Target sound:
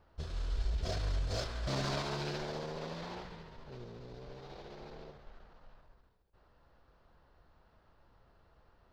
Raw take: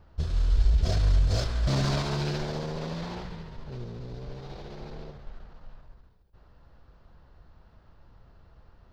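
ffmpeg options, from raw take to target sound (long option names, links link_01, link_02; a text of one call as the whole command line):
ffmpeg -i in.wav -af "bass=frequency=250:gain=-8,treble=frequency=4000:gain=-2,volume=-4.5dB" out.wav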